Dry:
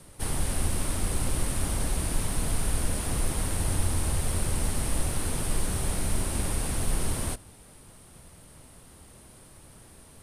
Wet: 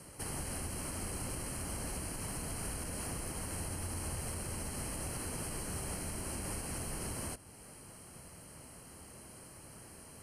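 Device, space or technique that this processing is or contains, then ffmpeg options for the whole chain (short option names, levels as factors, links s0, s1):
PA system with an anti-feedback notch: -af "highpass=f=100:p=1,asuperstop=centerf=3600:order=8:qfactor=4.7,alimiter=level_in=2:limit=0.0631:level=0:latency=1:release=325,volume=0.501"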